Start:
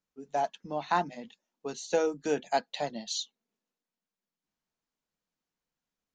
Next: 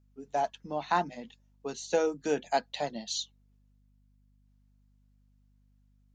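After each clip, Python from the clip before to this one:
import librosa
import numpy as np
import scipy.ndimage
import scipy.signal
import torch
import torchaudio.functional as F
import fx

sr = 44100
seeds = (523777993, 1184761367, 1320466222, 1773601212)

y = fx.add_hum(x, sr, base_hz=50, snr_db=30)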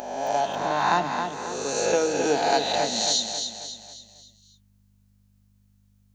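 y = fx.spec_swells(x, sr, rise_s=1.45)
y = fx.high_shelf(y, sr, hz=5600.0, db=9.0)
y = fx.echo_feedback(y, sr, ms=270, feedback_pct=45, wet_db=-6.5)
y = y * 10.0 ** (2.5 / 20.0)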